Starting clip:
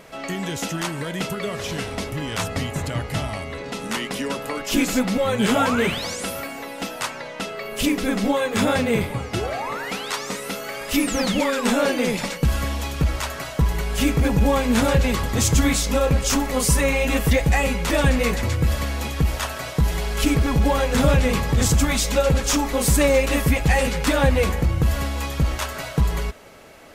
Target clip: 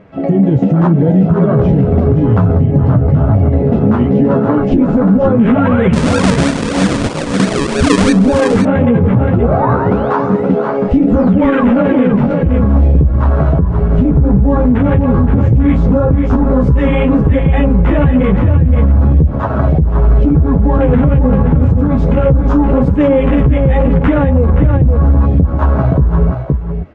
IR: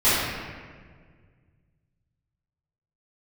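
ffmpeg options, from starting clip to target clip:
-filter_complex "[0:a]lowpass=2000,afwtdn=0.0398,equalizer=f=120:w=0.42:g=13.5,acompressor=threshold=0.126:ratio=12,flanger=delay=9.5:depth=6.4:regen=19:speed=0.87:shape=triangular,asettb=1/sr,asplit=3[s0][s1][s2];[s0]atrim=end=5.934[s3];[s1]atrim=start=5.93:end=8.13,asetpts=PTS-STARTPTS,afade=t=in:d=0.004:c=qsin,afade=t=out:st=2.196:d=0.004:c=qsin,acrusher=samples=42:mix=1:aa=0.000001:lfo=1:lforange=42:lforate=3.1[s4];[s2]atrim=start=8.126[s5];[s3][s4]acrossfade=d=0.004:c1=hsin:c2=qsin[s6];[s6][s5]acrossfade=d=0.004:c1=qsin:c2=hsin,aecho=1:1:522:0.398,alimiter=level_in=9.44:limit=0.891:release=50:level=0:latency=1,volume=0.891" -ar 22050 -c:a libmp3lame -b:a 80k

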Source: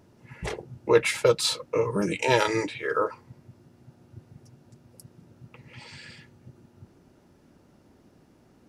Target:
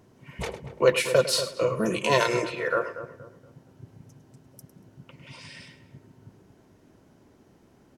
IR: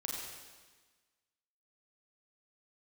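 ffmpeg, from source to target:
-filter_complex "[0:a]asplit=2[s0][s1];[s1]aecho=0:1:113:0.2[s2];[s0][s2]amix=inputs=2:normalize=0,asetrate=48000,aresample=44100,asplit=2[s3][s4];[s4]adelay=236,lowpass=f=1300:p=1,volume=0.282,asplit=2[s5][s6];[s6]adelay=236,lowpass=f=1300:p=1,volume=0.36,asplit=2[s7][s8];[s8]adelay=236,lowpass=f=1300:p=1,volume=0.36,asplit=2[s9][s10];[s10]adelay=236,lowpass=f=1300:p=1,volume=0.36[s11];[s5][s7][s9][s11]amix=inputs=4:normalize=0[s12];[s3][s12]amix=inputs=2:normalize=0"

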